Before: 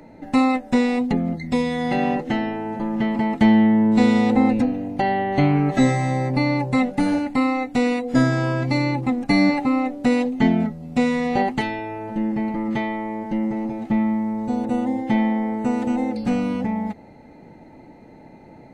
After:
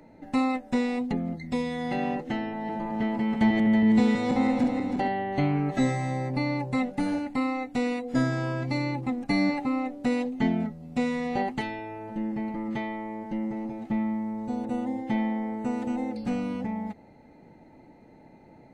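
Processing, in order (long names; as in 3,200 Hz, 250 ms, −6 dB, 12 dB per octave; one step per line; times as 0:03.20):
0:02.37–0:05.08: feedback delay that plays each chunk backwards 162 ms, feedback 70%, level −5 dB
level −7.5 dB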